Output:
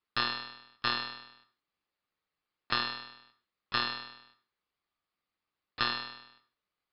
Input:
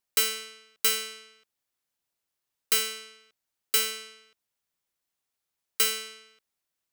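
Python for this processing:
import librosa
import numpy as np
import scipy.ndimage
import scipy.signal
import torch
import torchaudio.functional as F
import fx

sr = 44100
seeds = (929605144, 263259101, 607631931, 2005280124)

y = fx.lpc_monotone(x, sr, seeds[0], pitch_hz=120.0, order=10)
y = y * np.sin(2.0 * np.pi * 1200.0 * np.arange(len(y)) / sr)
y = fx.rev_gated(y, sr, seeds[1], gate_ms=190, shape='falling', drr_db=9.0)
y = y * librosa.db_to_amplitude(4.5)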